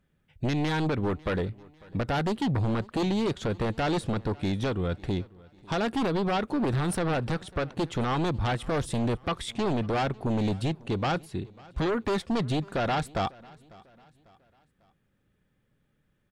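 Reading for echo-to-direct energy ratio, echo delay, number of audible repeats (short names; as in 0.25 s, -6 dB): -22.5 dB, 0.547 s, 2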